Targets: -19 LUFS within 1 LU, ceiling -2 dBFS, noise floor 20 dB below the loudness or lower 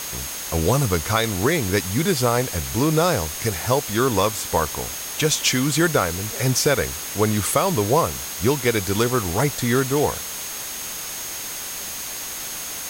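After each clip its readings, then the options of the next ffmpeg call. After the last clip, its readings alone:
steady tone 6.5 kHz; tone level -35 dBFS; noise floor -31 dBFS; noise floor target -42 dBFS; loudness -21.5 LUFS; peak level -7.0 dBFS; loudness target -19.0 LUFS
-> -af "bandreject=f=6500:w=30"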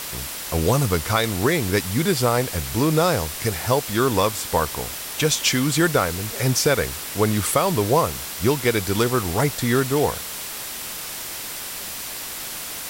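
steady tone not found; noise floor -32 dBFS; noise floor target -42 dBFS
-> -af "afftdn=nr=10:nf=-32"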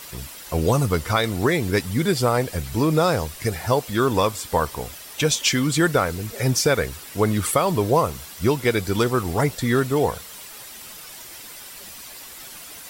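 noise floor -40 dBFS; noise floor target -42 dBFS
-> -af "afftdn=nr=6:nf=-40"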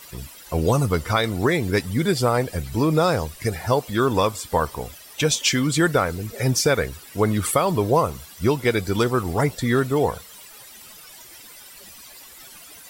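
noise floor -44 dBFS; loudness -22.0 LUFS; peak level -7.5 dBFS; loudness target -19.0 LUFS
-> -af "volume=1.41"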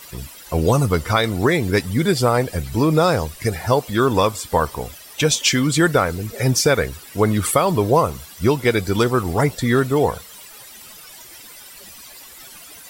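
loudness -19.0 LUFS; peak level -4.5 dBFS; noise floor -41 dBFS

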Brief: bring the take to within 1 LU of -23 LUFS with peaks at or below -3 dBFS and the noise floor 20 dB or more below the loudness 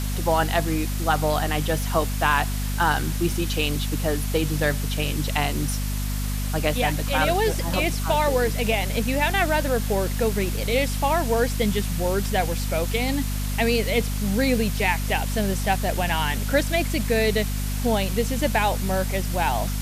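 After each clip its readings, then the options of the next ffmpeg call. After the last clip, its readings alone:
hum 50 Hz; highest harmonic 250 Hz; hum level -24 dBFS; noise floor -26 dBFS; noise floor target -44 dBFS; loudness -23.5 LUFS; peak level -6.5 dBFS; loudness target -23.0 LUFS
-> -af "bandreject=f=50:t=h:w=4,bandreject=f=100:t=h:w=4,bandreject=f=150:t=h:w=4,bandreject=f=200:t=h:w=4,bandreject=f=250:t=h:w=4"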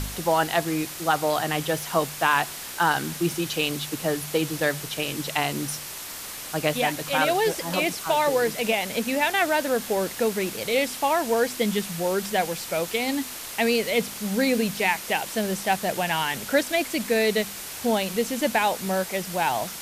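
hum not found; noise floor -37 dBFS; noise floor target -45 dBFS
-> -af "afftdn=nr=8:nf=-37"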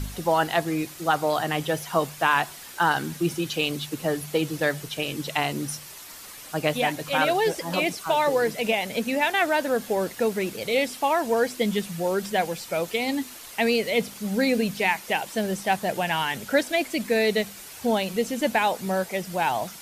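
noise floor -43 dBFS; noise floor target -45 dBFS
-> -af "afftdn=nr=6:nf=-43"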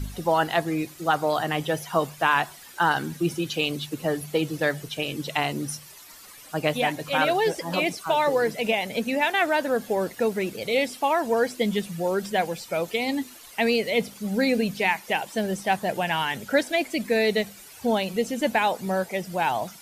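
noise floor -46 dBFS; loudness -25.5 LUFS; peak level -7.5 dBFS; loudness target -23.0 LUFS
-> -af "volume=1.33"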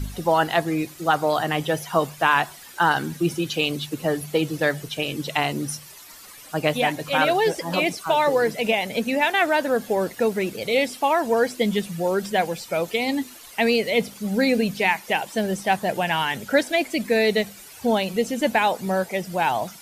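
loudness -23.0 LUFS; peak level -5.0 dBFS; noise floor -44 dBFS

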